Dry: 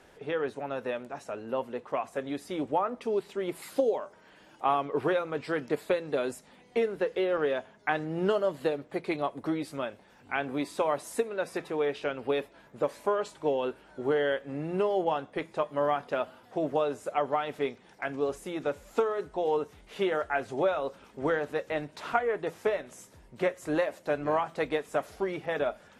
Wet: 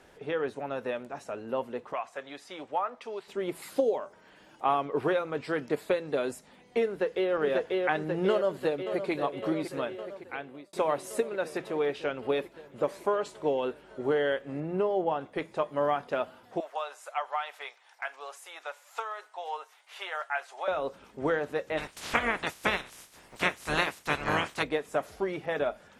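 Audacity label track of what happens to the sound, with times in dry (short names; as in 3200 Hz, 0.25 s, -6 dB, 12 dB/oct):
1.930000	3.280000	three-band isolator lows -15 dB, under 600 Hz, highs -13 dB, over 8000 Hz
6.870000	7.330000	echo throw 0.54 s, feedback 65%, level -1 dB
8.300000	9.110000	echo throw 0.56 s, feedback 80%, level -9.5 dB
9.890000	10.730000	fade out
14.600000	15.210000	high shelf 2500 Hz -10 dB
16.600000	20.680000	HPF 770 Hz 24 dB/oct
21.770000	24.620000	spectral limiter ceiling under each frame's peak by 27 dB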